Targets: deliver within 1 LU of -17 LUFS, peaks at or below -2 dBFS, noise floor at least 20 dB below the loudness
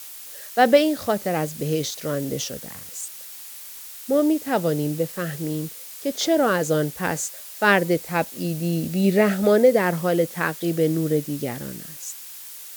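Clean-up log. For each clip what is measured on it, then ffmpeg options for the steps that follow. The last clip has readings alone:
noise floor -39 dBFS; noise floor target -43 dBFS; loudness -22.5 LUFS; peak level -3.0 dBFS; loudness target -17.0 LUFS
-> -af "afftdn=nr=6:nf=-39"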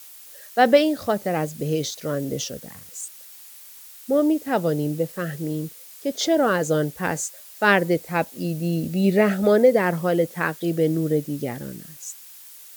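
noise floor -44 dBFS; loudness -22.5 LUFS; peak level -3.0 dBFS; loudness target -17.0 LUFS
-> -af "volume=1.88,alimiter=limit=0.794:level=0:latency=1"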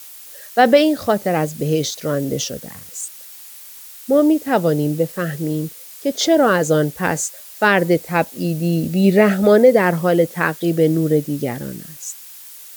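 loudness -17.5 LUFS; peak level -2.0 dBFS; noise floor -39 dBFS

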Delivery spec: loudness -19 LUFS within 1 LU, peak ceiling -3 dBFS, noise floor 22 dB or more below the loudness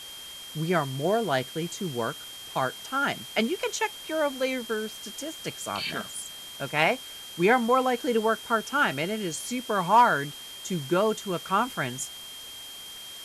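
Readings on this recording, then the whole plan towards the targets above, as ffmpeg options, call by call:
steady tone 3.2 kHz; tone level -41 dBFS; noise floor -42 dBFS; noise floor target -49 dBFS; loudness -27.0 LUFS; peak level -8.0 dBFS; loudness target -19.0 LUFS
-> -af "bandreject=f=3200:w=30"
-af "afftdn=nr=7:nf=-42"
-af "volume=2.51,alimiter=limit=0.708:level=0:latency=1"

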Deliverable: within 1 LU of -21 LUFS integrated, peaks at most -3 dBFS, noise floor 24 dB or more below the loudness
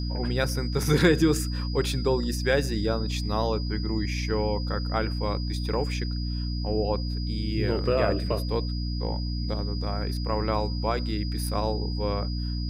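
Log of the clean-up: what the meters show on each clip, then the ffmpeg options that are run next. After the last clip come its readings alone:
hum 60 Hz; highest harmonic 300 Hz; hum level -27 dBFS; steady tone 4.9 kHz; tone level -39 dBFS; loudness -27.5 LUFS; peak level -8.5 dBFS; loudness target -21.0 LUFS
-> -af "bandreject=f=60:t=h:w=4,bandreject=f=120:t=h:w=4,bandreject=f=180:t=h:w=4,bandreject=f=240:t=h:w=4,bandreject=f=300:t=h:w=4"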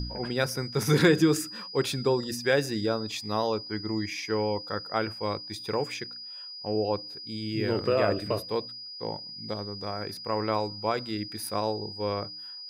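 hum not found; steady tone 4.9 kHz; tone level -39 dBFS
-> -af "bandreject=f=4900:w=30"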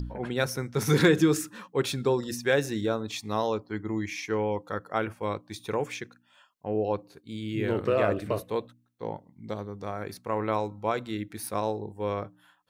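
steady tone not found; loudness -29.5 LUFS; peak level -9.5 dBFS; loudness target -21.0 LUFS
-> -af "volume=2.66,alimiter=limit=0.708:level=0:latency=1"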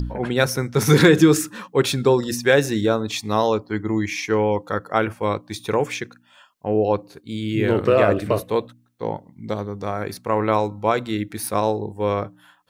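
loudness -21.0 LUFS; peak level -3.0 dBFS; noise floor -57 dBFS

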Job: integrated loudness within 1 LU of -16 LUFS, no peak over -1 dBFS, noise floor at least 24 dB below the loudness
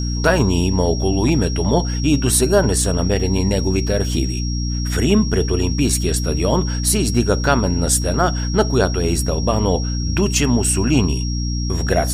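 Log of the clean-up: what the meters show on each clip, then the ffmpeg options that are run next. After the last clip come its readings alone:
hum 60 Hz; highest harmonic 300 Hz; hum level -19 dBFS; steady tone 5.6 kHz; tone level -29 dBFS; loudness -18.0 LUFS; peak level -1.0 dBFS; loudness target -16.0 LUFS
-> -af "bandreject=f=60:t=h:w=4,bandreject=f=120:t=h:w=4,bandreject=f=180:t=h:w=4,bandreject=f=240:t=h:w=4,bandreject=f=300:t=h:w=4"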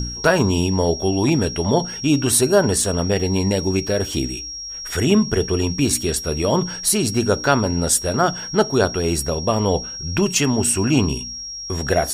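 hum not found; steady tone 5.6 kHz; tone level -29 dBFS
-> -af "bandreject=f=5600:w=30"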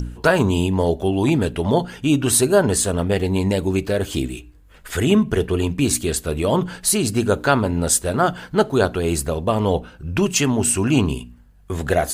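steady tone not found; loudness -19.5 LUFS; peak level -2.5 dBFS; loudness target -16.0 LUFS
-> -af "volume=1.5,alimiter=limit=0.891:level=0:latency=1"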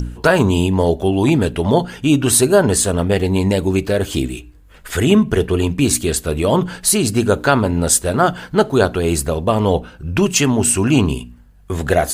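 loudness -16.0 LUFS; peak level -1.0 dBFS; noise floor -44 dBFS

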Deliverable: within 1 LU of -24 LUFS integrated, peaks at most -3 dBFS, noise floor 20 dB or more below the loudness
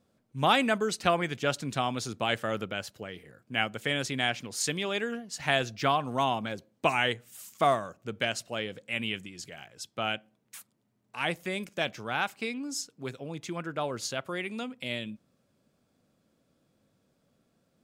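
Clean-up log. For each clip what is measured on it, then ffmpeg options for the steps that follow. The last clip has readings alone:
loudness -31.0 LUFS; peak level -8.5 dBFS; loudness target -24.0 LUFS
-> -af "volume=2.24,alimiter=limit=0.708:level=0:latency=1"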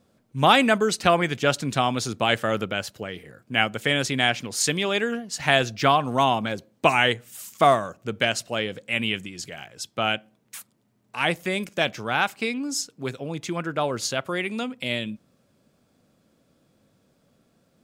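loudness -24.0 LUFS; peak level -3.0 dBFS; noise floor -66 dBFS

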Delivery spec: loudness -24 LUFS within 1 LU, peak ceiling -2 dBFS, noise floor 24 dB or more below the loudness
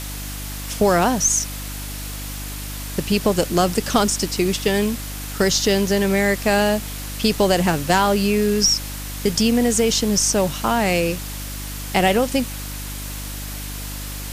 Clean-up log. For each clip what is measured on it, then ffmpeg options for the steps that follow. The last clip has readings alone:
hum 50 Hz; highest harmonic 300 Hz; hum level -30 dBFS; noise floor -30 dBFS; noise floor target -45 dBFS; loudness -20.5 LUFS; peak level -3.0 dBFS; loudness target -24.0 LUFS
-> -af "bandreject=f=50:t=h:w=4,bandreject=f=100:t=h:w=4,bandreject=f=150:t=h:w=4,bandreject=f=200:t=h:w=4,bandreject=f=250:t=h:w=4,bandreject=f=300:t=h:w=4"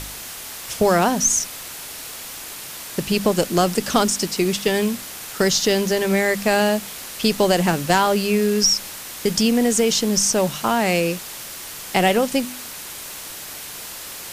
hum not found; noise floor -35 dBFS; noise floor target -44 dBFS
-> -af "afftdn=nr=9:nf=-35"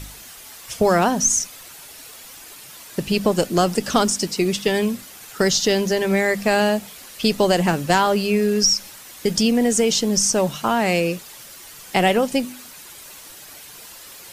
noise floor -41 dBFS; noise floor target -44 dBFS
-> -af "afftdn=nr=6:nf=-41"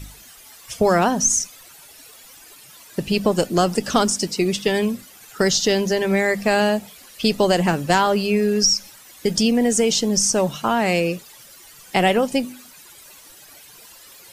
noise floor -46 dBFS; loudness -19.5 LUFS; peak level -3.0 dBFS; loudness target -24.0 LUFS
-> -af "volume=0.596"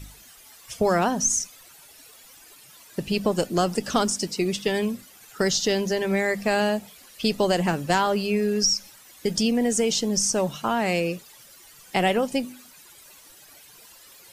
loudness -24.0 LUFS; peak level -7.5 dBFS; noise floor -50 dBFS

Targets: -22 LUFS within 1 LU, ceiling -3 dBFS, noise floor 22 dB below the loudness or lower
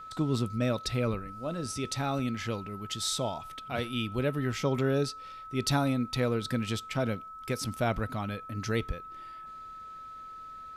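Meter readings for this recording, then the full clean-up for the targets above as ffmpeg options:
steady tone 1.3 kHz; tone level -42 dBFS; loudness -32.0 LUFS; peak level -14.0 dBFS; loudness target -22.0 LUFS
-> -af "bandreject=f=1300:w=30"
-af "volume=3.16"

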